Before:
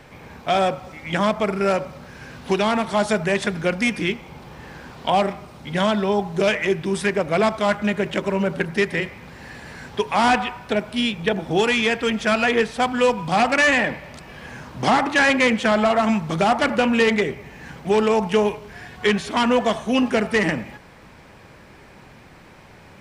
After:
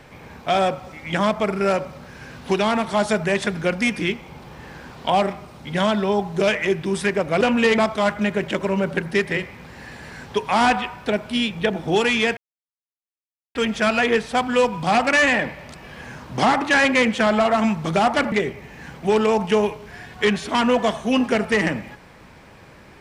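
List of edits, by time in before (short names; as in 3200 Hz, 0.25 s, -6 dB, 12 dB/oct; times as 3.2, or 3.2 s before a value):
12 insert silence 1.18 s
16.77–17.14 move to 7.41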